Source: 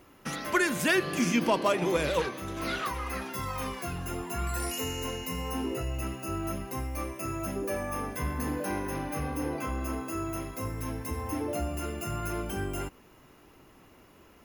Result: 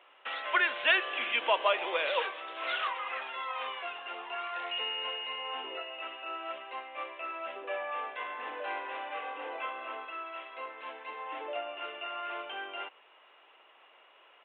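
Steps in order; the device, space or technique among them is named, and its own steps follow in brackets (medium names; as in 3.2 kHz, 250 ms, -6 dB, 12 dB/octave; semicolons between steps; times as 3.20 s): 10.05–10.51 s: peaking EQ 350 Hz -5 dB 2.8 oct; musical greeting card (resampled via 8 kHz; high-pass 560 Hz 24 dB/octave; peaking EQ 2.9 kHz +6 dB 0.53 oct)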